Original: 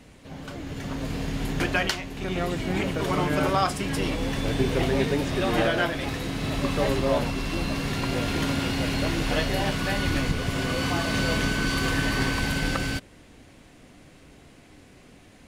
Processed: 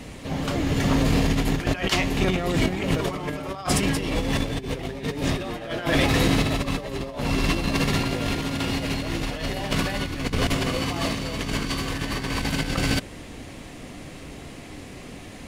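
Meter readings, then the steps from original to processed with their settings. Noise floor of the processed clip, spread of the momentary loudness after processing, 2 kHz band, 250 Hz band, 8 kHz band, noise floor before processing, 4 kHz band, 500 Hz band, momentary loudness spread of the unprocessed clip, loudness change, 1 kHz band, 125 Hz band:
-40 dBFS, 18 LU, -0.5 dB, +2.0 dB, +3.5 dB, -52 dBFS, +2.0 dB, -0.5 dB, 7 LU, +1.0 dB, -0.5 dB, +2.5 dB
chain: band-stop 1.5 kHz, Q 14; compressor with a negative ratio -30 dBFS, ratio -0.5; trim +6.5 dB

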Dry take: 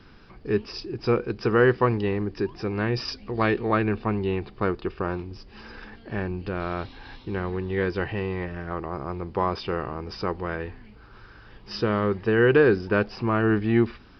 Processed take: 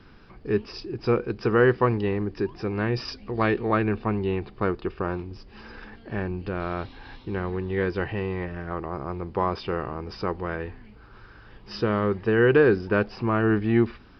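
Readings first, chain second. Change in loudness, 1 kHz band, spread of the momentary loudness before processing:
0.0 dB, -0.5 dB, 14 LU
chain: treble shelf 4.3 kHz -5.5 dB

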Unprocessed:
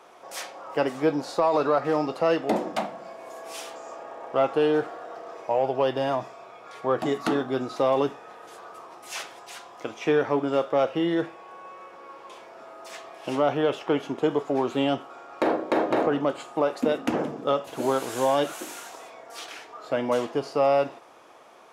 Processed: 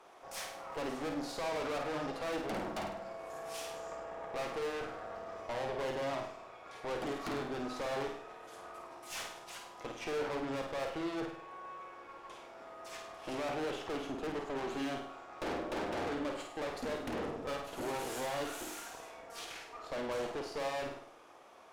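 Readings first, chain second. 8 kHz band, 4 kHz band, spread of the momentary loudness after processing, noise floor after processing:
-5.5 dB, -7.5 dB, 12 LU, -53 dBFS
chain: valve stage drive 33 dB, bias 0.75; flutter echo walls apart 8.8 m, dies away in 0.56 s; trim -3 dB

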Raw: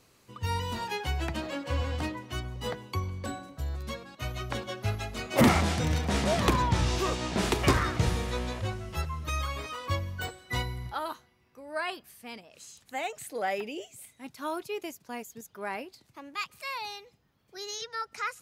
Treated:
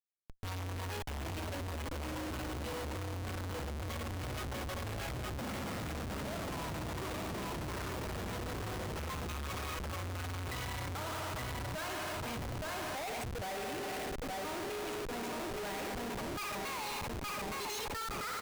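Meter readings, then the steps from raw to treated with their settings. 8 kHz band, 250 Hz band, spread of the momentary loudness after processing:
-4.5 dB, -9.0 dB, 2 LU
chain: spring tank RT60 2.9 s, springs 55 ms, chirp 60 ms, DRR 2 dB; reverse; compression 20:1, threshold -36 dBFS, peak gain reduction 21 dB; reverse; loudest bins only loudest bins 64; level held to a coarse grid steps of 21 dB; on a send: feedback delay 866 ms, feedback 40%, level -6 dB; on the sum: Schmitt trigger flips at -54 dBFS; trim +4.5 dB

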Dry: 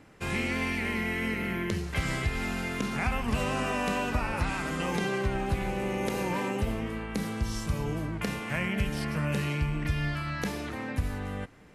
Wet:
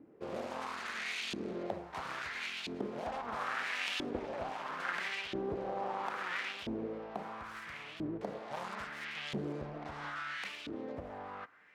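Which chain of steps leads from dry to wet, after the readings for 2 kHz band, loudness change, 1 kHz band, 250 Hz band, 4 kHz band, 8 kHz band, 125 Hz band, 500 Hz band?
-6.5 dB, -8.5 dB, -5.0 dB, -11.5 dB, -3.5 dB, -11.5 dB, -19.5 dB, -7.0 dB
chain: self-modulated delay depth 0.8 ms; LFO band-pass saw up 0.75 Hz 300–3300 Hz; trim +2.5 dB

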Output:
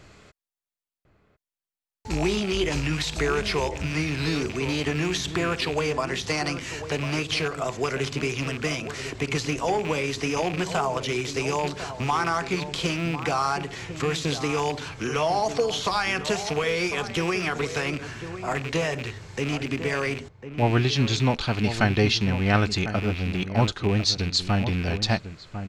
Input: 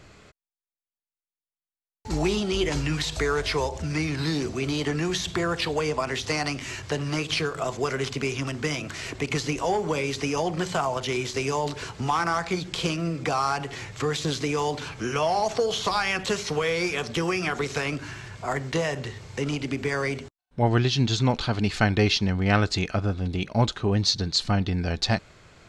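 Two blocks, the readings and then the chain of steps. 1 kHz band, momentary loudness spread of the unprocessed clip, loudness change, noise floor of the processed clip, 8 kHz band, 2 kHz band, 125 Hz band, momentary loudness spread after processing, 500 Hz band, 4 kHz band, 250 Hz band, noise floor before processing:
+0.5 dB, 8 LU, +0.5 dB, under -85 dBFS, 0.0 dB, +1.5 dB, +0.5 dB, 7 LU, +0.5 dB, +0.5 dB, +0.5 dB, under -85 dBFS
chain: rattle on loud lows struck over -32 dBFS, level -23 dBFS; echo from a far wall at 180 m, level -10 dB

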